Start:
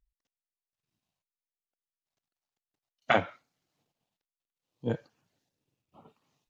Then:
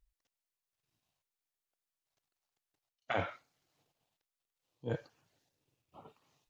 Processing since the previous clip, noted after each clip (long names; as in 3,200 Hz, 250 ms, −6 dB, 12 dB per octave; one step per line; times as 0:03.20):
reversed playback
downward compressor 8 to 1, threshold −33 dBFS, peak gain reduction 15 dB
reversed playback
parametric band 210 Hz −7 dB 0.77 octaves
level +2.5 dB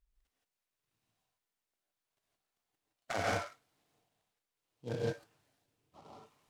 reverb whose tail is shaped and stops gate 190 ms rising, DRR −4.5 dB
short delay modulated by noise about 3,400 Hz, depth 0.036 ms
level −3.5 dB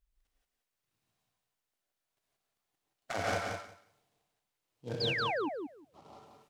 sound drawn into the spectrogram fall, 0:05.00–0:05.49, 260–5,200 Hz −34 dBFS
on a send: repeating echo 180 ms, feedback 15%, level −5 dB